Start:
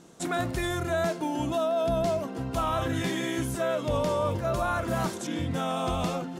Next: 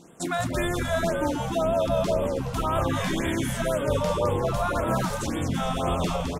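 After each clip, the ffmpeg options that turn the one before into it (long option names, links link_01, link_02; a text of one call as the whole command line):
ffmpeg -i in.wav -filter_complex "[0:a]asplit=2[link_01][link_02];[link_02]asplit=5[link_03][link_04][link_05][link_06][link_07];[link_03]adelay=211,afreqshift=-99,volume=-4.5dB[link_08];[link_04]adelay=422,afreqshift=-198,volume=-11.6dB[link_09];[link_05]adelay=633,afreqshift=-297,volume=-18.8dB[link_10];[link_06]adelay=844,afreqshift=-396,volume=-25.9dB[link_11];[link_07]adelay=1055,afreqshift=-495,volume=-33dB[link_12];[link_08][link_09][link_10][link_11][link_12]amix=inputs=5:normalize=0[link_13];[link_01][link_13]amix=inputs=2:normalize=0,afftfilt=real='re*(1-between(b*sr/1024,290*pow(5300/290,0.5+0.5*sin(2*PI*1.9*pts/sr))/1.41,290*pow(5300/290,0.5+0.5*sin(2*PI*1.9*pts/sr))*1.41))':imag='im*(1-between(b*sr/1024,290*pow(5300/290,0.5+0.5*sin(2*PI*1.9*pts/sr))/1.41,290*pow(5300/290,0.5+0.5*sin(2*PI*1.9*pts/sr))*1.41))':win_size=1024:overlap=0.75,volume=2dB" out.wav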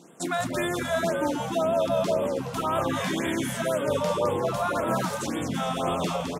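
ffmpeg -i in.wav -af "highpass=160" out.wav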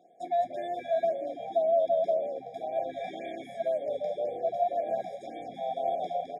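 ffmpeg -i in.wav -filter_complex "[0:a]asplit=3[link_01][link_02][link_03];[link_01]bandpass=frequency=730:width_type=q:width=8,volume=0dB[link_04];[link_02]bandpass=frequency=1090:width_type=q:width=8,volume=-6dB[link_05];[link_03]bandpass=frequency=2440:width_type=q:width=8,volume=-9dB[link_06];[link_04][link_05][link_06]amix=inputs=3:normalize=0,afftfilt=real='re*eq(mod(floor(b*sr/1024/800),2),0)':imag='im*eq(mod(floor(b*sr/1024/800),2),0)':win_size=1024:overlap=0.75,volume=5dB" out.wav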